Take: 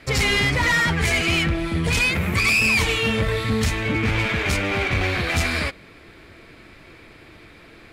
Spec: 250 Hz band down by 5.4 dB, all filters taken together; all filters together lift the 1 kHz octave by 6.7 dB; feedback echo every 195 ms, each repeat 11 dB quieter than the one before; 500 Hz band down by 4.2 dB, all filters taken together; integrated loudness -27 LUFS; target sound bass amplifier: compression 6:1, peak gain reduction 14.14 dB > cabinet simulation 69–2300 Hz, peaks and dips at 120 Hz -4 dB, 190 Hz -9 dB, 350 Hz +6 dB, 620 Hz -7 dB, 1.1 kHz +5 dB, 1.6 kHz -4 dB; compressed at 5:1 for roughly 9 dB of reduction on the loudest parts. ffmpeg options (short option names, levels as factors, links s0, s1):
-af "equalizer=f=250:t=o:g=-6.5,equalizer=f=500:t=o:g=-5,equalizer=f=1000:t=o:g=7.5,acompressor=threshold=0.0562:ratio=5,aecho=1:1:195|390|585:0.282|0.0789|0.0221,acompressor=threshold=0.0126:ratio=6,highpass=f=69:w=0.5412,highpass=f=69:w=1.3066,equalizer=f=120:t=q:w=4:g=-4,equalizer=f=190:t=q:w=4:g=-9,equalizer=f=350:t=q:w=4:g=6,equalizer=f=620:t=q:w=4:g=-7,equalizer=f=1100:t=q:w=4:g=5,equalizer=f=1600:t=q:w=4:g=-4,lowpass=f=2300:w=0.5412,lowpass=f=2300:w=1.3066,volume=5.62"